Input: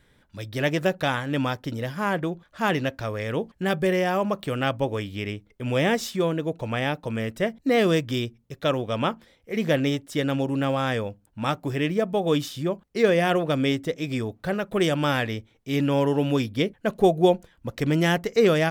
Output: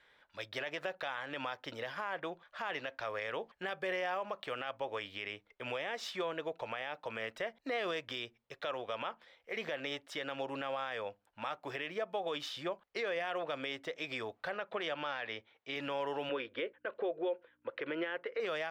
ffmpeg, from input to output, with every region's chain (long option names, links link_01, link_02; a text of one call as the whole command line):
ffmpeg -i in.wav -filter_complex "[0:a]asettb=1/sr,asplit=3[link_01][link_02][link_03];[link_01]atrim=end=14.524[link_04];[link_02]atrim=start=14.52:end=15.76,asetpts=PTS-STARTPTS,afade=type=in:duration=0.004:curve=qsin,afade=type=out:start_time=1.236:duration=0.004:curve=qsin,asoftclip=type=hard:threshold=-15dB,highpass=100,lowpass=4800[link_05];[link_03]atrim=start=15.756[link_06];[link_04][link_05]acrossfade=duration=0.004:curve1=hsin:curve2=qsin[link_07];[link_07][link_06]acrossfade=duration=0.004:curve1=qsin:curve2=hsin,asettb=1/sr,asplit=3[link_08][link_09][link_10];[link_08]atrim=end=16.294[link_11];[link_09]atrim=start=16.29:end=18.4,asetpts=PTS-STARTPTS,afade=type=in:duration=0.004:curve=qsin,afade=type=out:start_time=2.106:duration=0.004:curve=qsin,agate=range=-33dB:threshold=-53dB:ratio=3:release=100:detection=peak,aeval=exprs='val(0)+0.00316*(sin(2*PI*60*n/s)+sin(2*PI*2*60*n/s)/2+sin(2*PI*3*60*n/s)/3+sin(2*PI*4*60*n/s)/4+sin(2*PI*5*60*n/s)/5)':channel_layout=same,highpass=170,equalizer=frequency=190:width_type=q:width=4:gain=-9,equalizer=frequency=340:width_type=q:width=4:gain=7,equalizer=frequency=510:width_type=q:width=4:gain=9,equalizer=frequency=740:width_type=q:width=4:gain=-9,equalizer=frequency=1500:width_type=q:width=4:gain=5,lowpass=frequency=3200:width=0.5412,lowpass=frequency=3200:width=1.3066[link_12];[link_10]atrim=start=18.396[link_13];[link_11][link_12]acrossfade=duration=0.004:curve1=hsin:curve2=qsin[link_14];[link_14][link_13]acrossfade=duration=0.004:curve1=qsin:curve2=hsin,acrossover=split=520 4600:gain=0.0708 1 0.126[link_15][link_16][link_17];[link_15][link_16][link_17]amix=inputs=3:normalize=0,acompressor=threshold=-34dB:ratio=2,alimiter=level_in=3.5dB:limit=-24dB:level=0:latency=1:release=57,volume=-3.5dB" out.wav